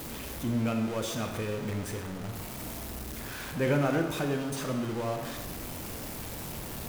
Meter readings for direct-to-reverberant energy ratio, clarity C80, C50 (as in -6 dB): 4.0 dB, 7.0 dB, 5.5 dB